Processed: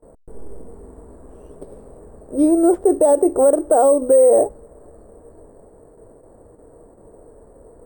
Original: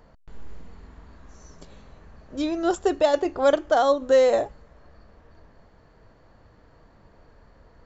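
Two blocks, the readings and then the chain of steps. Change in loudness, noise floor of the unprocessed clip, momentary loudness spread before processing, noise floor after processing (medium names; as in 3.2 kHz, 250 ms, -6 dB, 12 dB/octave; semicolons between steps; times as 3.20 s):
+6.5 dB, -56 dBFS, 11 LU, -48 dBFS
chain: gate with hold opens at -46 dBFS; FFT filter 170 Hz 0 dB, 440 Hz +14 dB, 2.6 kHz -18 dB; peak limiter -9.5 dBFS, peak gain reduction 10 dB; sample-and-hold 5×; trim +3 dB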